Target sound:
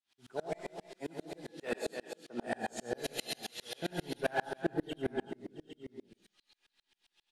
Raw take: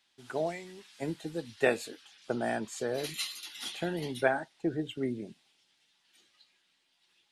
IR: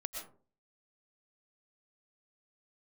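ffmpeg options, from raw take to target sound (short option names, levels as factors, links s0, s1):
-filter_complex "[0:a]asoftclip=type=tanh:threshold=0.119,asettb=1/sr,asplit=3[s0][s1][s2];[s0]atrim=end=0.684[s3];[s1]atrim=start=0.68:end=2.47,asetpts=PTS-STARTPTS,afade=t=in:d=0.004:c=qsin,afade=t=out:st=1.786:d=0.004:c=qsin,highpass=f=160:w=0.5412,highpass=f=160:w=1.3066[s4];[s2]atrim=start=2.466[s5];[s3][s4]acrossfade=d=0.004:c1=hsin:c2=qsin[s6];[s6][s5]acrossfade=d=0.004:c1=qsin:c2=hsin,aecho=1:1:292|667|808:0.335|0.106|0.251[s7];[1:a]atrim=start_sample=2205,asetrate=57330,aresample=44100[s8];[s7][s8]afir=irnorm=-1:irlink=0,asoftclip=type=hard:threshold=0.0422,aeval=exprs='val(0)*pow(10,-34*if(lt(mod(-7.5*n/s,1),2*abs(-7.5)/1000),1-mod(-7.5*n/s,1)/(2*abs(-7.5)/1000),(mod(-7.5*n/s,1)-2*abs(-7.5)/1000)/(1-2*abs(-7.5)/1000))/20)':c=same,volume=2.24"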